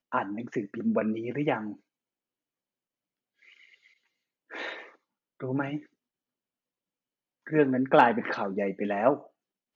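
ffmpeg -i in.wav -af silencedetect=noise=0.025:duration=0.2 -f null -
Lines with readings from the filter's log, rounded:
silence_start: 1.71
silence_end: 4.54 | silence_duration: 2.83
silence_start: 4.79
silence_end: 5.43 | silence_duration: 0.64
silence_start: 5.77
silence_end: 7.48 | silence_duration: 1.70
silence_start: 9.16
silence_end: 9.75 | silence_duration: 0.59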